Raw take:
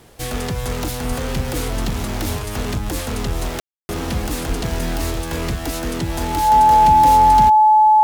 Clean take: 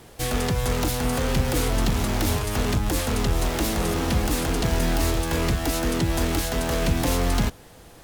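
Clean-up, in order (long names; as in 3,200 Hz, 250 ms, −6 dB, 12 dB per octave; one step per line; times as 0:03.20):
notch filter 860 Hz, Q 30
high-pass at the plosives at 0:01.08/0:04.48
ambience match 0:03.60–0:03.89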